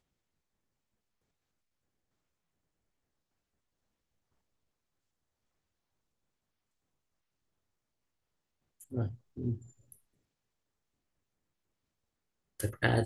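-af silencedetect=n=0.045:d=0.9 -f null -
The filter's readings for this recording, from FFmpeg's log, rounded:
silence_start: 0.00
silence_end: 8.97 | silence_duration: 8.97
silence_start: 9.52
silence_end: 12.60 | silence_duration: 3.08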